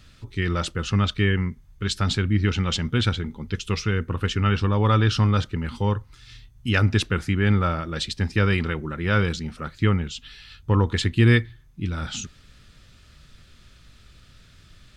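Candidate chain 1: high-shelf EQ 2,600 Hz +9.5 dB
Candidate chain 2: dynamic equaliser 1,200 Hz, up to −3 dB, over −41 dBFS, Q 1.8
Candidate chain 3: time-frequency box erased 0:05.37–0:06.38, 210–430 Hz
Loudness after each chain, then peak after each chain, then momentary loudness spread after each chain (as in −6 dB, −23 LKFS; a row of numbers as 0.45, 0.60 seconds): −22.0, −24.0, −23.5 LKFS; −2.5, −5.0, −4.5 dBFS; 12, 12, 12 LU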